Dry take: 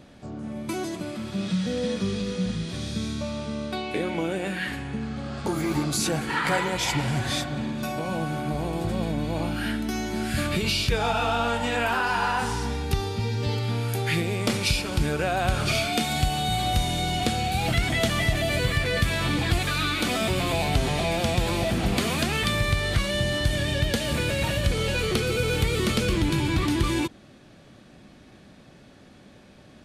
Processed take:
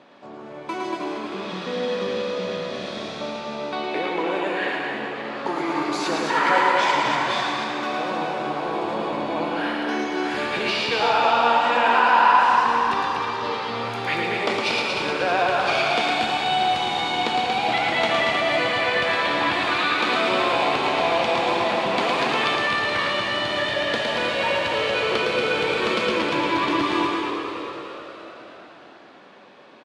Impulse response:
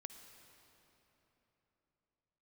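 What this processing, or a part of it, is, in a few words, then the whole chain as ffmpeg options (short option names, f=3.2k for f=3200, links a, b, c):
station announcement: -filter_complex "[0:a]highpass=390,lowpass=3.5k,equalizer=f=1k:t=o:w=0.35:g=7.5,aecho=1:1:110.8|233.2:0.631|0.562[a];[1:a]atrim=start_sample=2205[b];[a][b]afir=irnorm=-1:irlink=0,asplit=8[c][d][e][f][g][h][i][j];[d]adelay=312,afreqshift=69,volume=-9.5dB[k];[e]adelay=624,afreqshift=138,volume=-14.1dB[l];[f]adelay=936,afreqshift=207,volume=-18.7dB[m];[g]adelay=1248,afreqshift=276,volume=-23.2dB[n];[h]adelay=1560,afreqshift=345,volume=-27.8dB[o];[i]adelay=1872,afreqshift=414,volume=-32.4dB[p];[j]adelay=2184,afreqshift=483,volume=-37dB[q];[c][k][l][m][n][o][p][q]amix=inputs=8:normalize=0,volume=8.5dB"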